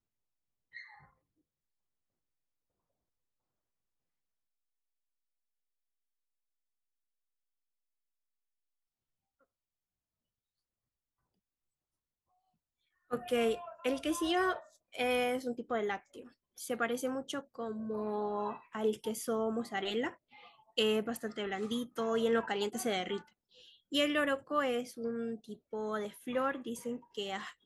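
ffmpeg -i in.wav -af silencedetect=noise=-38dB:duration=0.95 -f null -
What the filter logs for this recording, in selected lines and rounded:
silence_start: 0.77
silence_end: 13.12 | silence_duration: 12.36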